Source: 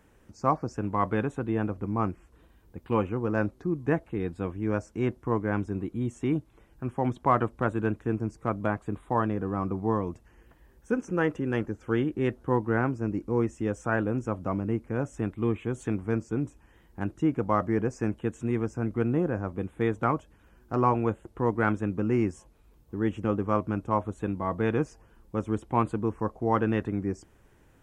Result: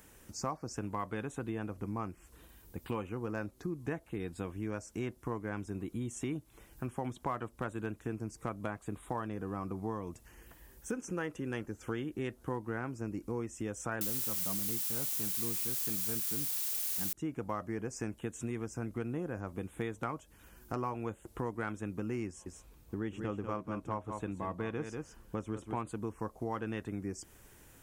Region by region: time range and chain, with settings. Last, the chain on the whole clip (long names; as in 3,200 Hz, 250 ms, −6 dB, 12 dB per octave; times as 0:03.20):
0:14.01–0:17.13: parametric band 180 Hz +11 dB 0.3 octaves + bit-depth reduction 6 bits, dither triangular
0:22.27–0:25.87: high-shelf EQ 6,400 Hz −10 dB + single-tap delay 191 ms −8.5 dB
whole clip: first-order pre-emphasis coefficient 0.8; downward compressor 4 to 1, threshold −49 dBFS; level +13.5 dB